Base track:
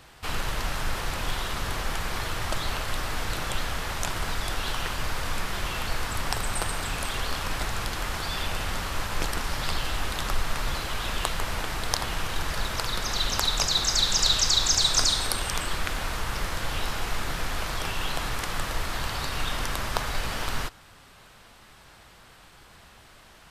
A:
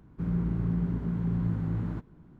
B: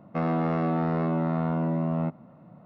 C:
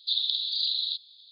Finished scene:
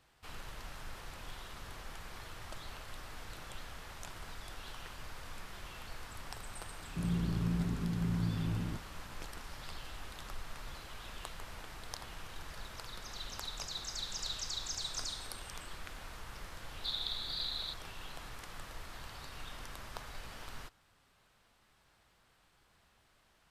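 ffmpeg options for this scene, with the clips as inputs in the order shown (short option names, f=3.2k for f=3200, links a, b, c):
-filter_complex "[0:a]volume=-17.5dB[a];[1:a]atrim=end=2.39,asetpts=PTS-STARTPTS,volume=-5dB,afade=t=in:d=0.004:c=hsin,afade=t=out:st=2.386:d=0.004:c=hsin,adelay=6770[b];[3:a]atrim=end=1.31,asetpts=PTS-STARTPTS,volume=-11dB,afade=t=in:d=0.004:c=hsin,afade=t=out:st=1.306:d=0.004:c=hsin,adelay=16770[c];[a][b][c]amix=inputs=3:normalize=0"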